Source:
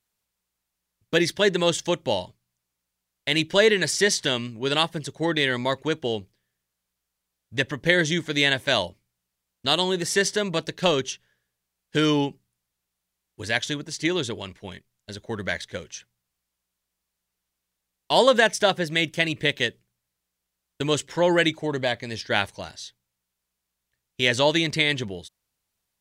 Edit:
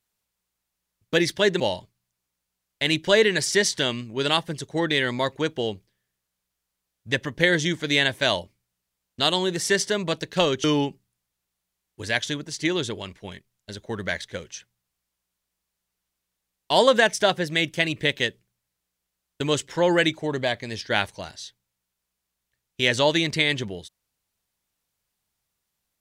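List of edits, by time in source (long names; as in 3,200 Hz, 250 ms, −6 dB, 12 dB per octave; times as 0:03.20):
0:01.60–0:02.06: remove
0:11.10–0:12.04: remove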